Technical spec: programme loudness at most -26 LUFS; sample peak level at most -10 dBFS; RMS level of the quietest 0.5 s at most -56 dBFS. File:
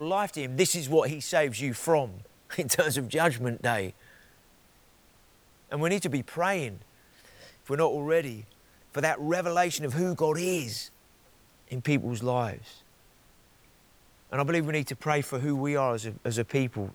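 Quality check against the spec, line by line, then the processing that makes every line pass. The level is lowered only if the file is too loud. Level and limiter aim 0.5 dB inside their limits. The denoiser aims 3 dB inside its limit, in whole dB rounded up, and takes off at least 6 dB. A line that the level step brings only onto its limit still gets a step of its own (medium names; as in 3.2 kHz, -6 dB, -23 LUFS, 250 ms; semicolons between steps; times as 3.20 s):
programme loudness -28.5 LUFS: pass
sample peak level -9.0 dBFS: fail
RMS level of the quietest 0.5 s -60 dBFS: pass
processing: peak limiter -10.5 dBFS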